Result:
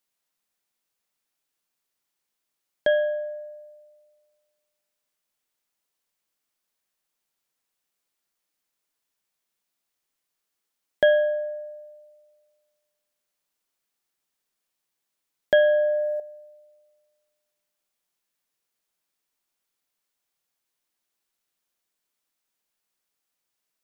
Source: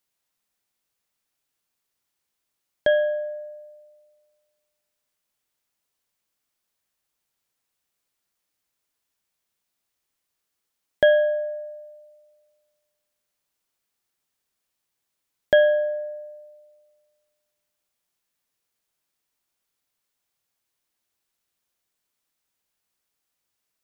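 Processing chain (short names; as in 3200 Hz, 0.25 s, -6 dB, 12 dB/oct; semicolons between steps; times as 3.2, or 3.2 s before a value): bell 73 Hz -13 dB 1 oct; 15.6–16.2 fast leveller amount 50%; gain -1.5 dB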